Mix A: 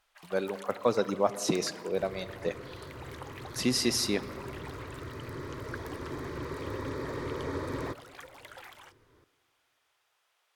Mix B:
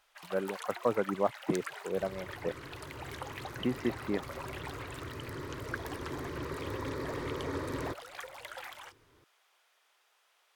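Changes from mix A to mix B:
speech: add low-pass 1.9 kHz 24 dB/octave; first sound +4.5 dB; reverb: off

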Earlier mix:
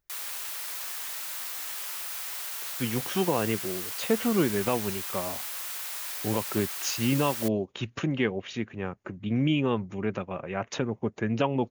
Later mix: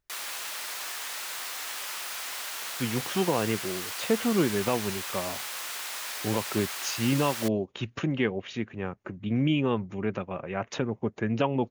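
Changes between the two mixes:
background +5.0 dB; master: add treble shelf 10 kHz -11.5 dB

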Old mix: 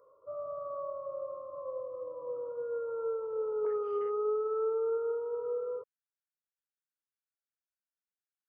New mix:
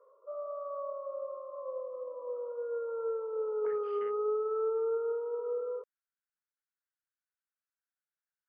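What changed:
speech +6.5 dB; background: add steep high-pass 360 Hz 48 dB/octave

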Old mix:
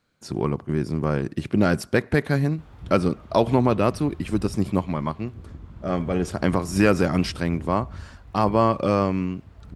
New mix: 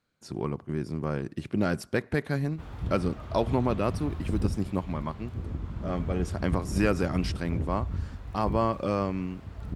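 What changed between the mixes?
speech -7.0 dB; background +6.0 dB

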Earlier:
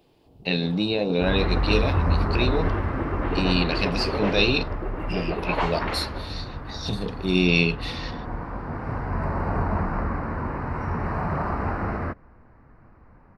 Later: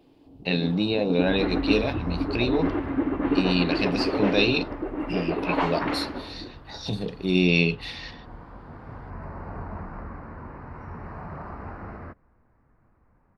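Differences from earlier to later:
first sound: add peaking EQ 280 Hz +13 dB 0.33 oct; second sound -11.0 dB; master: add treble shelf 4.9 kHz -6 dB

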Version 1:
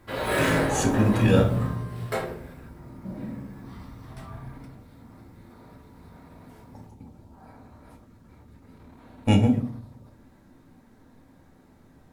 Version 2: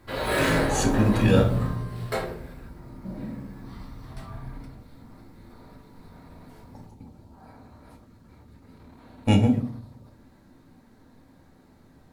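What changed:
background: remove high-pass 57 Hz; master: add peaking EQ 4.3 kHz +5.5 dB 0.28 oct

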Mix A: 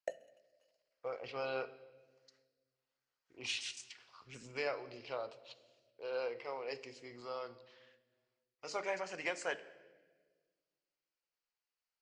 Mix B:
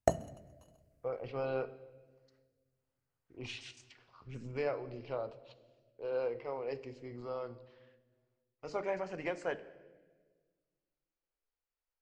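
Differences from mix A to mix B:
background: remove vowel filter e; master: add tilt EQ -4 dB/octave

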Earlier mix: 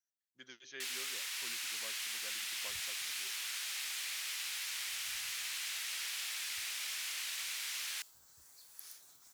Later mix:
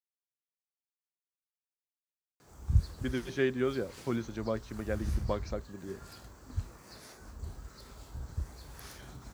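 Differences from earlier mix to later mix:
speech: entry +2.65 s; first sound: muted; master: remove differentiator

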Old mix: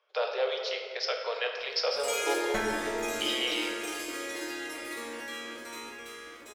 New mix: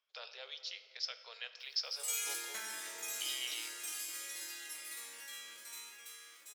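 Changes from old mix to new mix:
speech: send -9.5 dB; master: add differentiator

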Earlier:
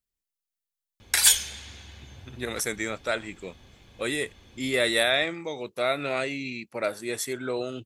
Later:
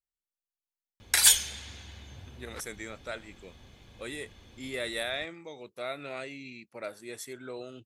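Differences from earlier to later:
speech -10.5 dB; reverb: off

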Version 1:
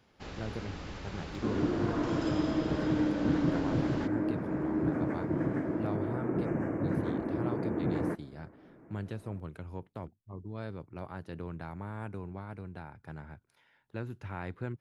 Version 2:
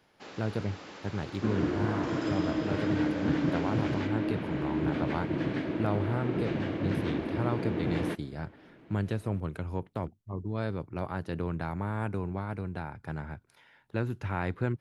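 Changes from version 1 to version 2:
speech +7.5 dB; first sound: add high-pass 280 Hz; second sound: remove Butterworth band-stop 3.7 kHz, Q 0.57

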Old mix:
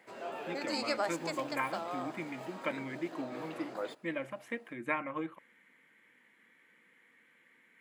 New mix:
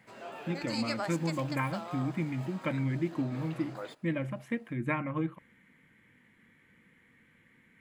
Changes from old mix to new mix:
background: add high-pass 810 Hz 6 dB/octave; master: remove high-pass 400 Hz 12 dB/octave

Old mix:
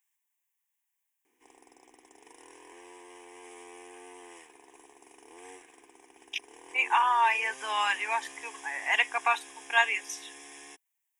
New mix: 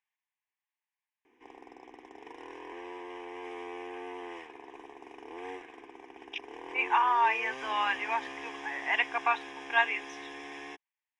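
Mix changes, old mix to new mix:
background +9.0 dB; master: add distance through air 250 m

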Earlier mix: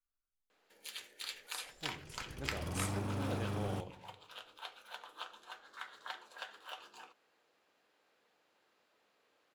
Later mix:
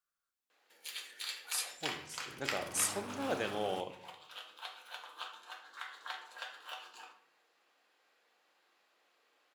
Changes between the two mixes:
speech +11.5 dB; first sound: send on; master: add high-pass 670 Hz 6 dB/octave

